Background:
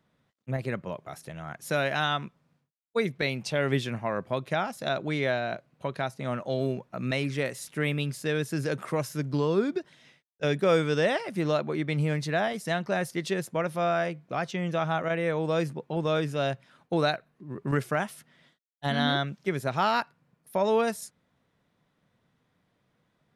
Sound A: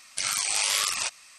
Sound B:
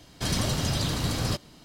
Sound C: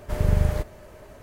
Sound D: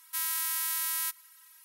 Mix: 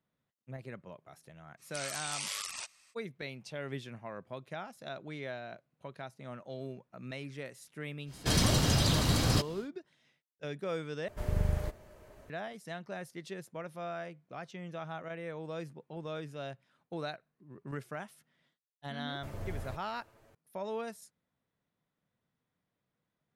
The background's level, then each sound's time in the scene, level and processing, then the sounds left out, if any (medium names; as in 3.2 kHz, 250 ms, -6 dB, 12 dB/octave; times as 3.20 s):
background -13.5 dB
1.57 s: add A -13 dB, fades 0.05 s
8.05 s: add B, fades 0.10 s
11.08 s: replace with C -9.5 dB
19.13 s: add C -15 dB + comb filter that takes the minimum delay 9 ms
not used: D